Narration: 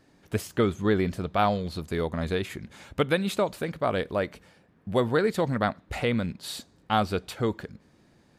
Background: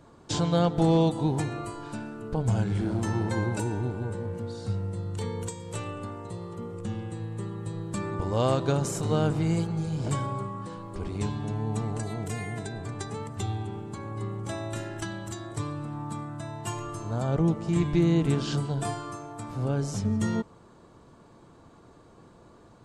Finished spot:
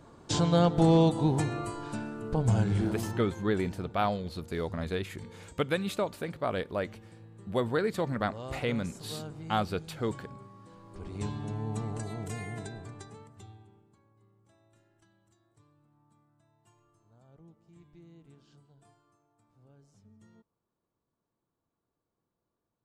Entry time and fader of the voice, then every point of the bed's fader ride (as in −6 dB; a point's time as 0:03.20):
2.60 s, −5.0 dB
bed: 0:02.84 0 dB
0:03.41 −16.5 dB
0:10.58 −16.5 dB
0:11.26 −4.5 dB
0:12.64 −4.5 dB
0:14.20 −32 dB